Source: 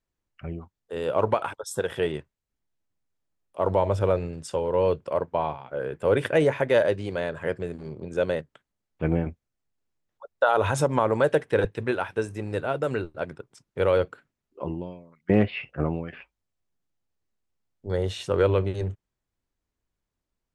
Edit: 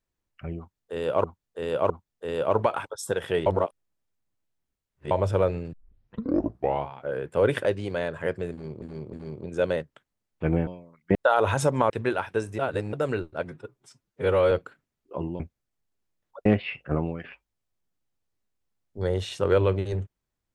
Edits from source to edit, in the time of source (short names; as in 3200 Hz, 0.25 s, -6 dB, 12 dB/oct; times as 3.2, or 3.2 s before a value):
0.58–1.24 loop, 3 plays
2.14–3.79 reverse
4.41 tape start 1.16 s
6.33–6.86 cut
7.72–8.03 loop, 3 plays
9.26–10.32 swap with 14.86–15.34
11.07–11.72 cut
12.41–12.75 reverse
13.27–13.98 stretch 1.5×